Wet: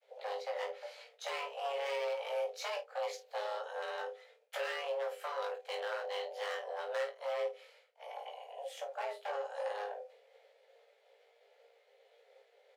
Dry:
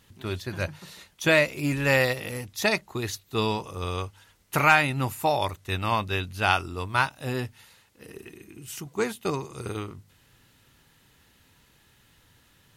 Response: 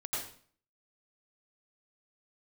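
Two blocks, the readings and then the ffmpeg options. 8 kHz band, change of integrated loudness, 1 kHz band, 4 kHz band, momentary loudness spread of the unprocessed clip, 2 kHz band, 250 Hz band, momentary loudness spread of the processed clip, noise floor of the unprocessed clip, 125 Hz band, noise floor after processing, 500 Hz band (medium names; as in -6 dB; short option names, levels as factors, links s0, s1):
-16.0 dB, -13.5 dB, -12.5 dB, -12.0 dB, 18 LU, -17.0 dB, under -35 dB, 10 LU, -61 dBFS, under -40 dB, -69 dBFS, -7.5 dB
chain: -filter_complex "[0:a]aemphasis=mode=reproduction:type=cd,agate=range=0.0224:threshold=0.00158:ratio=3:detection=peak,lowpass=f=1700:p=1,equalizer=f=710:w=1.1:g=-10,acrossover=split=150|300[s0][s1][s2];[s0]acompressor=threshold=0.0112:ratio=4[s3];[s1]acompressor=threshold=0.00501:ratio=4[s4];[s2]acompressor=threshold=0.0112:ratio=4[s5];[s3][s4][s5]amix=inputs=3:normalize=0,asoftclip=type=hard:threshold=0.0168,tremolo=f=250:d=0.571,afreqshift=410,asplit=2[s6][s7];[s7]adelay=24,volume=0.335[s8];[s6][s8]amix=inputs=2:normalize=0,aecho=1:1:17|51:0.631|0.299,volume=1.26"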